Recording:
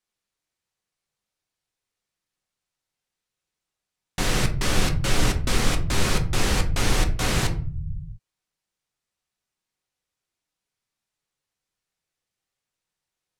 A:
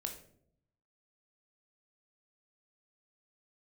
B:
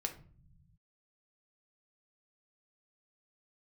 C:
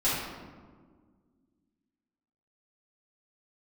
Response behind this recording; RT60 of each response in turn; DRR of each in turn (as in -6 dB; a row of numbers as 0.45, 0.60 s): B; 0.65, 0.45, 1.7 s; 3.0, 4.0, -12.0 dB